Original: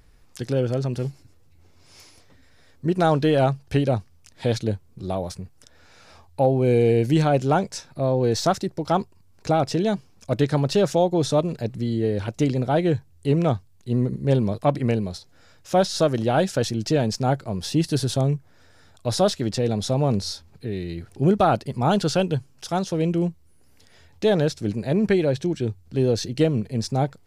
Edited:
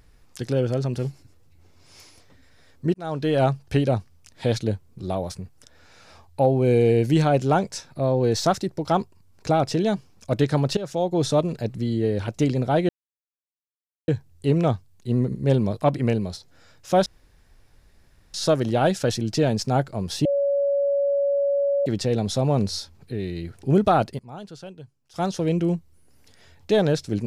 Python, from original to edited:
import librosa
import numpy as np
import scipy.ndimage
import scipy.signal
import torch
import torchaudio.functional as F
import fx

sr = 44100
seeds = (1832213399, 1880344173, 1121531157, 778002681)

y = fx.edit(x, sr, fx.fade_in_span(start_s=2.94, length_s=0.51),
    fx.fade_in_from(start_s=10.77, length_s=0.46, floor_db=-16.5),
    fx.insert_silence(at_s=12.89, length_s=1.19),
    fx.insert_room_tone(at_s=15.87, length_s=1.28),
    fx.bleep(start_s=17.78, length_s=1.61, hz=563.0, db=-18.5),
    fx.fade_down_up(start_s=21.36, length_s=1.67, db=-18.5, fade_s=0.36, curve='log'), tone=tone)